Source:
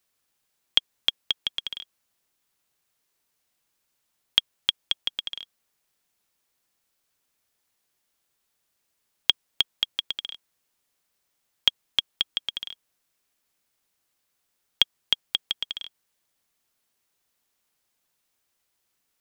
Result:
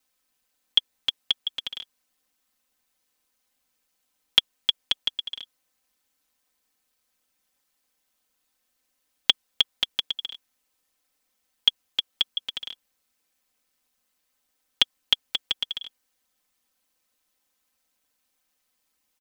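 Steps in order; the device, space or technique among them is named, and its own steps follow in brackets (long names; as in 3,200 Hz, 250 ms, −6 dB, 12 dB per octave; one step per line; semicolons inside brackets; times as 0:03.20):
ring-modulated robot voice (ring modulation 77 Hz; comb filter 3.9 ms, depth 92%)
level +1 dB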